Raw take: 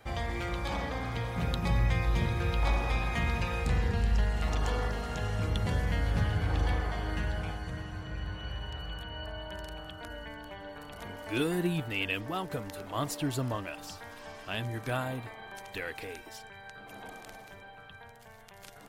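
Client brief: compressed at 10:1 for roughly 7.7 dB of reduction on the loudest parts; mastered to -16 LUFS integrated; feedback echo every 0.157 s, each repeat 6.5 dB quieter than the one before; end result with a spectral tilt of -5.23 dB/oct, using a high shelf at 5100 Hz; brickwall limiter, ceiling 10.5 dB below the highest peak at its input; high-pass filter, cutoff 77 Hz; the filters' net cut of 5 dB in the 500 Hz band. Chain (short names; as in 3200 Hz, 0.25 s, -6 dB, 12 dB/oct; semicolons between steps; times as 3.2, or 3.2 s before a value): HPF 77 Hz; bell 500 Hz -6.5 dB; high shelf 5100 Hz -5 dB; compressor 10:1, threshold -34 dBFS; limiter -34 dBFS; feedback echo 0.157 s, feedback 47%, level -6.5 dB; gain +27 dB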